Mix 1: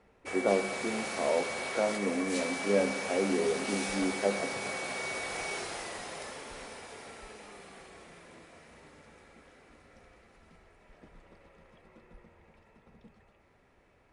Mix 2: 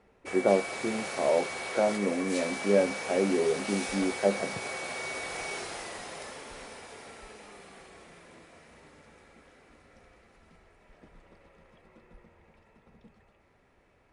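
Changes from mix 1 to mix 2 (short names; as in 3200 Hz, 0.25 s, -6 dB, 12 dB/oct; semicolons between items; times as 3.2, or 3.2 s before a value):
speech +4.0 dB; reverb: off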